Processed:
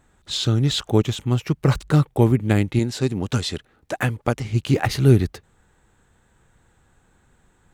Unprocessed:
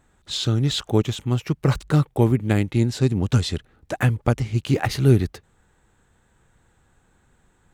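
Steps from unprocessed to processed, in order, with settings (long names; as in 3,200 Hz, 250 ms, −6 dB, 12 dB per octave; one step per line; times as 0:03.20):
0:02.79–0:04.45: low-shelf EQ 160 Hz −10 dB
level +1.5 dB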